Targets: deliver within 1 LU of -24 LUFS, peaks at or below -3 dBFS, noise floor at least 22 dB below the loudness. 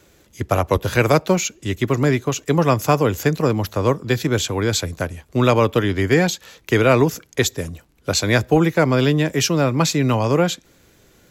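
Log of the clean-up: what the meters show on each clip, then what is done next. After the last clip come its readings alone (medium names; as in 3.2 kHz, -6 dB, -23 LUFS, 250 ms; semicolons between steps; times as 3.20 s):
tick rate 21 per s; loudness -19.0 LUFS; peak level -3.0 dBFS; loudness target -24.0 LUFS
-> de-click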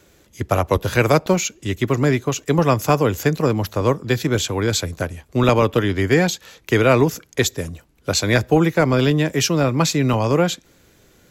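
tick rate 0.35 per s; loudness -19.0 LUFS; peak level -3.0 dBFS; loudness target -24.0 LUFS
-> trim -5 dB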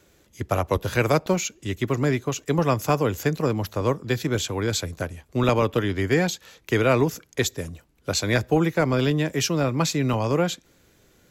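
loudness -24.0 LUFS; peak level -8.0 dBFS; noise floor -60 dBFS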